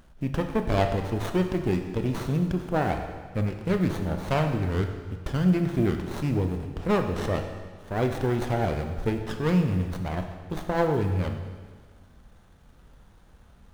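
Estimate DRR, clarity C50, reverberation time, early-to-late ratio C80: 5.0 dB, 7.0 dB, 1.6 s, 8.0 dB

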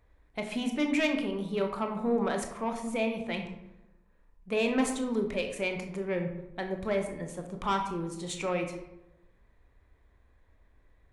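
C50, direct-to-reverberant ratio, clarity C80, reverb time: 7.0 dB, 4.0 dB, 9.5 dB, 0.95 s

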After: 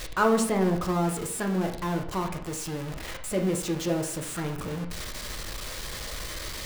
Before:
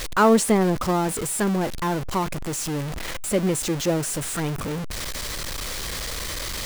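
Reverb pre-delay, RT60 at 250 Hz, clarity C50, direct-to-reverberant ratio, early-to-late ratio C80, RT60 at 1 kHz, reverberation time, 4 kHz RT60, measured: 4 ms, 0.65 s, 9.0 dB, 2.5 dB, 12.5 dB, 0.60 s, 0.60 s, 0.45 s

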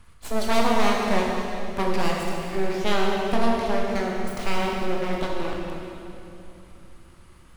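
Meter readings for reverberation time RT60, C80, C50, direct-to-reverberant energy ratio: 3.0 s, 1.0 dB, 0.0 dB, −2.0 dB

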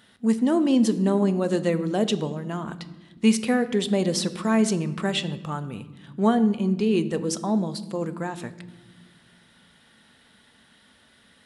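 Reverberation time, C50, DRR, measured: 1.2 s, 14.5 dB, 11.0 dB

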